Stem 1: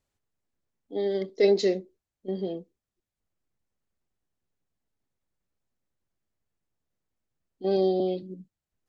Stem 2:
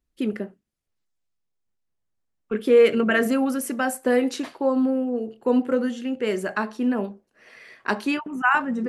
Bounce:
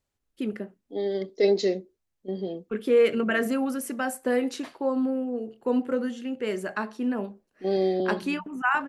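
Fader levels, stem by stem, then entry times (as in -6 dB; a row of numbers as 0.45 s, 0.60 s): -0.5 dB, -4.5 dB; 0.00 s, 0.20 s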